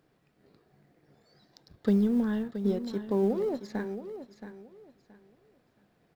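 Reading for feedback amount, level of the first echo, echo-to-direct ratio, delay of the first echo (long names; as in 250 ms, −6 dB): 24%, −11.0 dB, −10.5 dB, 674 ms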